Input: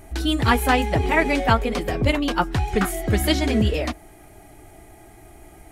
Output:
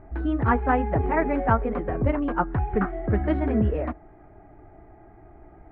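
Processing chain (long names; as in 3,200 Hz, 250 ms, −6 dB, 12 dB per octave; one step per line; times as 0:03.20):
low-pass filter 1,600 Hz 24 dB per octave
level −2.5 dB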